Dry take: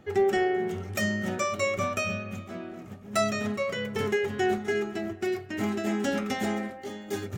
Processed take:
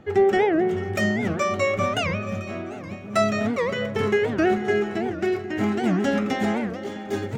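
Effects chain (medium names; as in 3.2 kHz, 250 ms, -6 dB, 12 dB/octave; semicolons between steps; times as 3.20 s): low-pass 3 kHz 6 dB/octave; echo whose repeats swap between lows and highs 219 ms, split 900 Hz, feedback 76%, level -11.5 dB; warped record 78 rpm, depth 250 cents; trim +5.5 dB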